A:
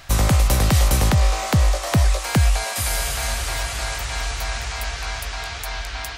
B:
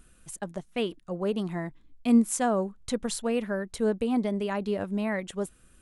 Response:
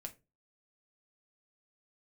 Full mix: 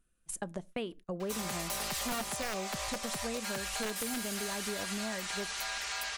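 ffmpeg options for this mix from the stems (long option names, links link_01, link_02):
-filter_complex "[0:a]highpass=frequency=990:poles=1,aecho=1:1:5:0.86,asoftclip=type=hard:threshold=-21dB,adelay=1200,volume=-0.5dB[link_01];[1:a]equalizer=frequency=140:width_type=o:width=0.33:gain=-3.5,aeval=exprs='(mod(7.5*val(0)+1,2)-1)/7.5':channel_layout=same,volume=1dB,asplit=2[link_02][link_03];[link_03]volume=-9.5dB[link_04];[2:a]atrim=start_sample=2205[link_05];[link_04][link_05]afir=irnorm=-1:irlink=0[link_06];[link_01][link_02][link_06]amix=inputs=3:normalize=0,agate=range=-21dB:threshold=-42dB:ratio=16:detection=peak,acompressor=threshold=-35dB:ratio=5"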